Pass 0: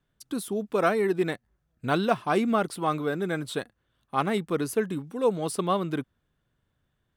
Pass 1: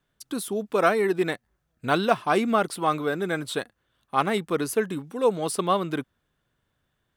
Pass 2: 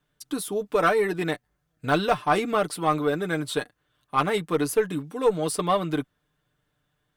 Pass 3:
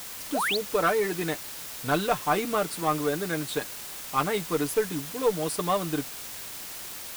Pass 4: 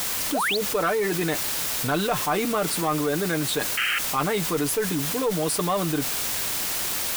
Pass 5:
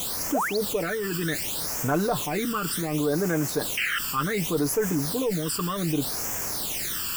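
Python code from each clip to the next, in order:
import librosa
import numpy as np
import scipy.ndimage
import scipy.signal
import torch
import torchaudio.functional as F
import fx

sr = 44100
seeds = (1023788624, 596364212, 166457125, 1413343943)

y1 = fx.low_shelf(x, sr, hz=300.0, db=-6.5)
y1 = y1 * librosa.db_to_amplitude(4.0)
y2 = y1 + 0.59 * np.pad(y1, (int(6.7 * sr / 1000.0), 0))[:len(y1)]
y2 = fx.tube_stage(y2, sr, drive_db=8.0, bias=0.25)
y3 = fx.spec_paint(y2, sr, seeds[0], shape='rise', start_s=0.34, length_s=0.23, low_hz=500.0, high_hz=4900.0, level_db=-24.0)
y3 = fx.quant_dither(y3, sr, seeds[1], bits=6, dither='triangular')
y3 = y3 * librosa.db_to_amplitude(-3.0)
y4 = fx.spec_paint(y3, sr, seeds[2], shape='noise', start_s=3.77, length_s=0.22, low_hz=1200.0, high_hz=3200.0, level_db=-28.0)
y4 = fx.env_flatten(y4, sr, amount_pct=70)
y4 = y4 * librosa.db_to_amplitude(-2.5)
y5 = fx.phaser_stages(y4, sr, stages=12, low_hz=660.0, high_hz=3900.0, hz=0.67, feedback_pct=25)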